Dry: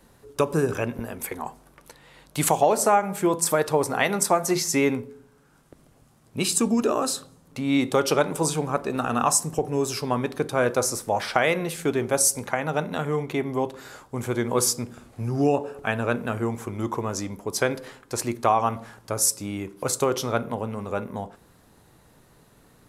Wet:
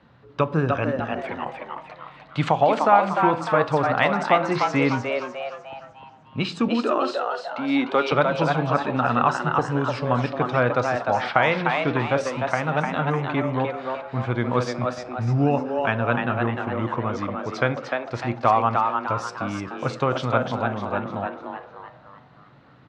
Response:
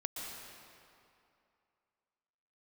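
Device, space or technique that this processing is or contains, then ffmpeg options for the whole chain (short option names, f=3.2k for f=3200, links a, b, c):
frequency-shifting delay pedal into a guitar cabinet: -filter_complex "[0:a]asettb=1/sr,asplit=3[a][b][c];[a]atrim=end=6.684[d];[b]atrim=start=6.68:end=8.12,asetpts=PTS-STARTPTS,afade=t=in:d=0.004:c=qsin,afade=t=out:st=1.436:d=0.004:c=qsin,highpass=f=230:w=0.5412,highpass=f=230:w=1.3066[e];[c]atrim=start=8.116[f];[d][e]acrossfade=d=0.004:c1=hsin:c2=qsin[g];[g][f]acrossfade=d=0.004:c1=qsin:c2=hsin,asplit=6[h][i][j][k][l][m];[i]adelay=301,afreqshift=130,volume=-4.5dB[n];[j]adelay=602,afreqshift=260,volume=-11.8dB[o];[k]adelay=903,afreqshift=390,volume=-19.2dB[p];[l]adelay=1204,afreqshift=520,volume=-26.5dB[q];[m]adelay=1505,afreqshift=650,volume=-33.8dB[r];[h][n][o][p][q][r]amix=inputs=6:normalize=0,highpass=78,equalizer=f=130:t=q:w=4:g=7,equalizer=f=400:t=q:w=4:g=-7,equalizer=f=1.3k:t=q:w=4:g=4,lowpass=f=3.7k:w=0.5412,lowpass=f=3.7k:w=1.3066,volume=1.5dB"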